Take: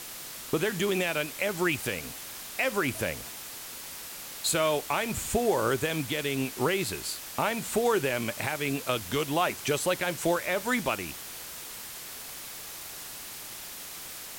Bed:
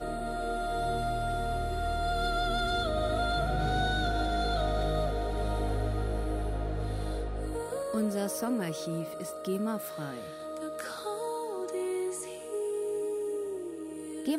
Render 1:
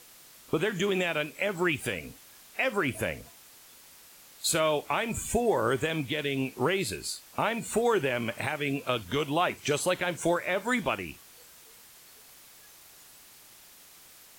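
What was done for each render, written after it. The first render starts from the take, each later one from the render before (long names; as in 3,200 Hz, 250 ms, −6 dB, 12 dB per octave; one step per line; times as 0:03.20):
noise reduction from a noise print 12 dB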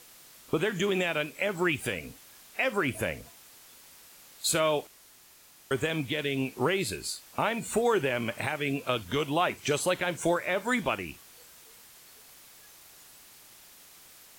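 0:04.87–0:05.71: fill with room tone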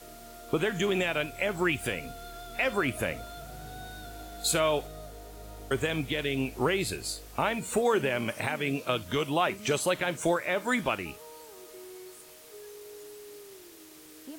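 mix in bed −14.5 dB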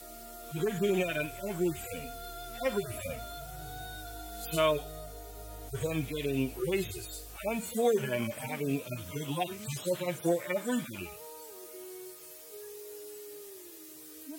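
harmonic-percussive split with one part muted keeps harmonic
high-shelf EQ 6,900 Hz +10 dB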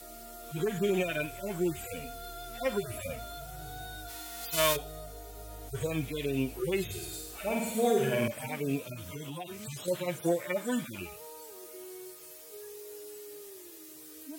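0:04.08–0:04.75: spectral envelope flattened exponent 0.3
0:06.85–0:08.28: flutter between parallel walls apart 8.8 metres, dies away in 0.83 s
0:08.85–0:09.88: downward compressor 4 to 1, threshold −37 dBFS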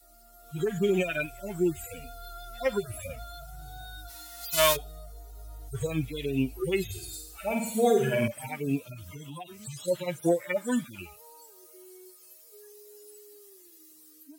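spectral dynamics exaggerated over time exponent 1.5
automatic gain control gain up to 5.5 dB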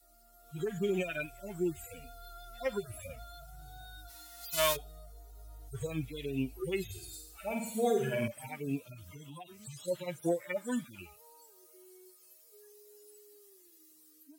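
level −6.5 dB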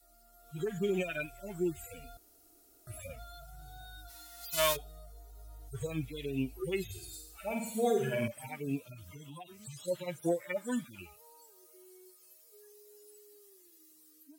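0:02.17–0:02.87: fill with room tone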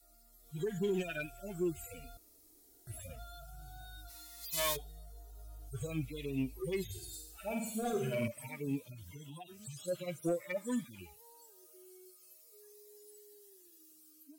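soft clipping −24.5 dBFS, distortion −16 dB
phaser whose notches keep moving one way falling 0.48 Hz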